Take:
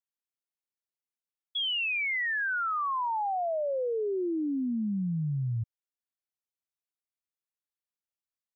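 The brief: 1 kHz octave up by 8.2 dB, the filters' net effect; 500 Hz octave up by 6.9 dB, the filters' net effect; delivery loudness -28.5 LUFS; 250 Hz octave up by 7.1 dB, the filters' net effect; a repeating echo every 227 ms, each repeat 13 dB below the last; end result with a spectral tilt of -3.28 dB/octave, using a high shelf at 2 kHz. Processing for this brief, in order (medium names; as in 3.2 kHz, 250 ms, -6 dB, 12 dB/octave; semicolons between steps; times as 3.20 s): peaking EQ 250 Hz +7.5 dB; peaking EQ 500 Hz +4 dB; peaking EQ 1 kHz +7.5 dB; treble shelf 2 kHz +5 dB; feedback delay 227 ms, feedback 22%, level -13 dB; trim -5 dB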